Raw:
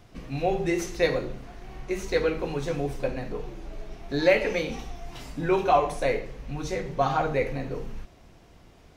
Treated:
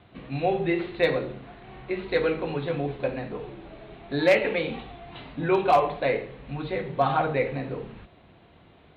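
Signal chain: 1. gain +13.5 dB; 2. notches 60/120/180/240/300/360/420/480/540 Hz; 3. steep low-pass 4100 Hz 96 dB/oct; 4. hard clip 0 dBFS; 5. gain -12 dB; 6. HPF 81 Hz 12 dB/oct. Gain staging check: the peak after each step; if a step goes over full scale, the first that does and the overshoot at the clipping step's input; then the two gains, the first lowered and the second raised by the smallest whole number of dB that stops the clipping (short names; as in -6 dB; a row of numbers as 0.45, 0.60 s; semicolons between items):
+5.0, +6.5, +6.0, 0.0, -12.0, -10.5 dBFS; step 1, 6.0 dB; step 1 +7.5 dB, step 5 -6 dB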